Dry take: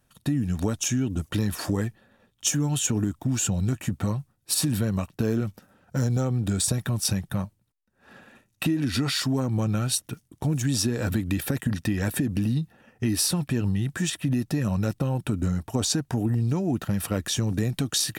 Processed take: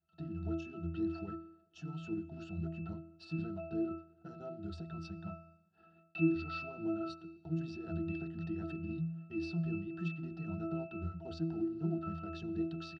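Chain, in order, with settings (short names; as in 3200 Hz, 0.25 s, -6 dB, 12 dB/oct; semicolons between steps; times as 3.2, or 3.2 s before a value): crackle 13/s -51 dBFS; bell 92 Hz -12.5 dB 1.5 oct; in parallel at -7.5 dB: companded quantiser 4-bit; on the sum: notches 60/120/180/240/300/360/420/480/540 Hz; tempo 1.4×; synth low-pass 4500 Hz, resonance Q 4.6; octave resonator E, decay 0.63 s; tremolo 3.8 Hz, depth 29%; on a send at -23 dB: reverb RT60 1.6 s, pre-delay 63 ms; on the sum: gain +8 dB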